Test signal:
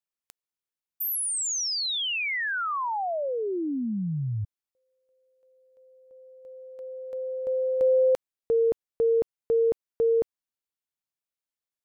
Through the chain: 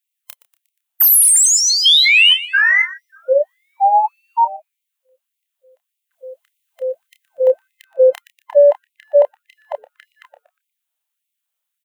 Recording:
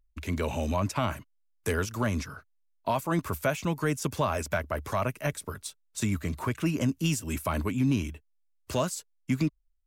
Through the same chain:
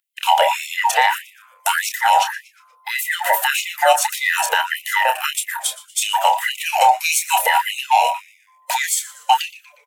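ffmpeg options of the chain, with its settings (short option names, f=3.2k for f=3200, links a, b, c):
-filter_complex "[0:a]afftfilt=real='real(if(between(b,1,1008),(2*floor((b-1)/48)+1)*48-b,b),0)':imag='imag(if(between(b,1,1008),(2*floor((b-1)/48)+1)*48-b,b),0)*if(between(b,1,1008),-1,1)':win_size=2048:overlap=0.75,agate=range=-6dB:threshold=-52dB:ratio=16:release=37:detection=rms,aexciter=amount=1.2:drive=7.2:freq=2.7k,asplit=2[a][b];[b]adynamicsmooth=sensitivity=1.5:basefreq=4.7k,volume=0dB[c];[a][c]amix=inputs=2:normalize=0,asplit=2[d][e];[e]adelay=29,volume=-8dB[f];[d][f]amix=inputs=2:normalize=0,asplit=2[g][h];[h]asplit=4[i][j][k][l];[i]adelay=119,afreqshift=-150,volume=-18dB[m];[j]adelay=238,afreqshift=-300,volume=-24.7dB[n];[k]adelay=357,afreqshift=-450,volume=-31.5dB[o];[l]adelay=476,afreqshift=-600,volume=-38.2dB[p];[m][n][o][p]amix=inputs=4:normalize=0[q];[g][q]amix=inputs=2:normalize=0,alimiter=level_in=13dB:limit=-1dB:release=50:level=0:latency=1,afftfilt=real='re*gte(b*sr/1024,460*pow(2000/460,0.5+0.5*sin(2*PI*1.7*pts/sr)))':imag='im*gte(b*sr/1024,460*pow(2000/460,0.5+0.5*sin(2*PI*1.7*pts/sr)))':win_size=1024:overlap=0.75,volume=-2.5dB"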